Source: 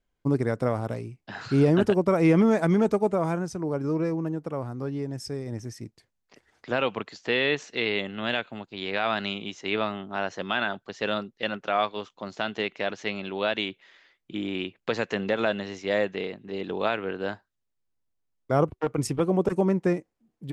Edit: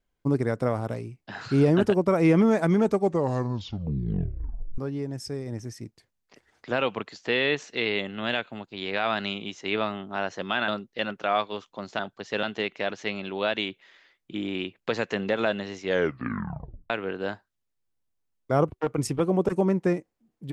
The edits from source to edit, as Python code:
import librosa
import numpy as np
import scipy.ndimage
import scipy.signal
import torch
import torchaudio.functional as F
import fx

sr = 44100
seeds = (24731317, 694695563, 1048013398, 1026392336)

y = fx.edit(x, sr, fx.tape_stop(start_s=2.91, length_s=1.87),
    fx.move(start_s=10.68, length_s=0.44, to_s=12.43),
    fx.tape_stop(start_s=15.84, length_s=1.06), tone=tone)